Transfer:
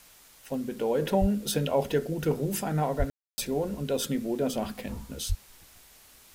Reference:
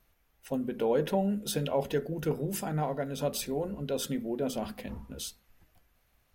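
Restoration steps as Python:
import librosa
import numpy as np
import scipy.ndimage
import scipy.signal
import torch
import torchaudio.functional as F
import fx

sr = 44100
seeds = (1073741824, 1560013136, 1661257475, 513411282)

y = fx.fix_deplosive(x, sr, at_s=(1.2, 2.98, 5.28))
y = fx.fix_ambience(y, sr, seeds[0], print_start_s=5.83, print_end_s=6.33, start_s=3.1, end_s=3.38)
y = fx.noise_reduce(y, sr, print_start_s=5.83, print_end_s=6.33, reduce_db=14.0)
y = fx.fix_level(y, sr, at_s=1.02, step_db=-3.5)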